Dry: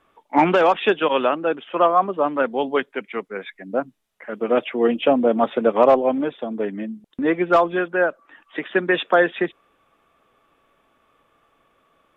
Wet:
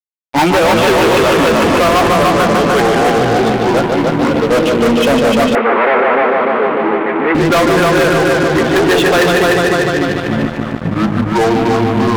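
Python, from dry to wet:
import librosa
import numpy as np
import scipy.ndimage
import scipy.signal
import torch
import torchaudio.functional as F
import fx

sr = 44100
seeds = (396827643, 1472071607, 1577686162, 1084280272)

p1 = fx.noise_reduce_blind(x, sr, reduce_db=10)
p2 = fx.echo_pitch(p1, sr, ms=83, semitones=-7, count=3, db_per_echo=-6.0)
p3 = fx.doubler(p2, sr, ms=18.0, db=-12.0)
p4 = p3 + fx.echo_heads(p3, sr, ms=149, heads='first and second', feedback_pct=65, wet_db=-7, dry=0)
p5 = fx.fuzz(p4, sr, gain_db=23.0, gate_db=-32.0)
p6 = fx.cabinet(p5, sr, low_hz=370.0, low_slope=12, high_hz=2500.0, hz=(400.0, 590.0, 850.0, 1300.0, 2100.0), db=(4, -6, 4, 5, 5), at=(5.55, 7.35))
y = p6 * 10.0 ** (5.0 / 20.0)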